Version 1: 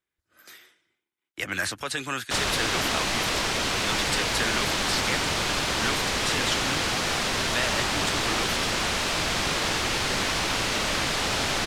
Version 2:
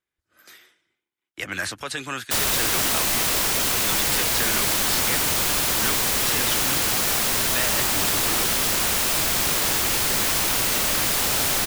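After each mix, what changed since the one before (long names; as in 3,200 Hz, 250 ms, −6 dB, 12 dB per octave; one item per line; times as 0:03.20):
background: remove low-pass filter 5,000 Hz 12 dB per octave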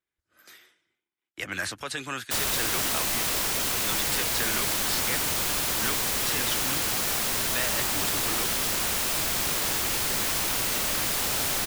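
speech −3.0 dB
background −5.0 dB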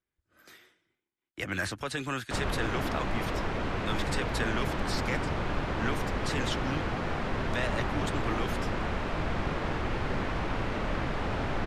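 background: add low-pass filter 2,000 Hz 12 dB per octave
master: add spectral tilt −2 dB per octave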